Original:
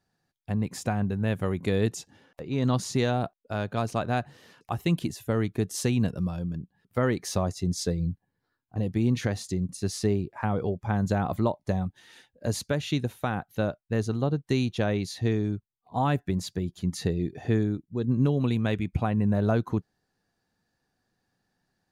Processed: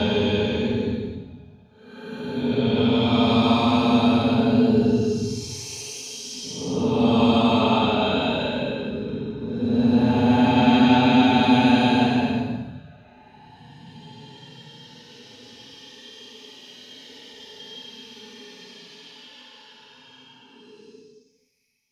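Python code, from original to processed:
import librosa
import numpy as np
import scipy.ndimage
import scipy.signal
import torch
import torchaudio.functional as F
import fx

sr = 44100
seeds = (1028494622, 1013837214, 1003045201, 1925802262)

y = fx.band_shelf(x, sr, hz=3800.0, db=12.0, octaves=1.7)
y = fx.paulstretch(y, sr, seeds[0], factor=21.0, window_s=0.05, from_s=3.62)
y = fx.small_body(y, sr, hz=(250.0, 420.0, 870.0, 3200.0), ring_ms=75, db=17)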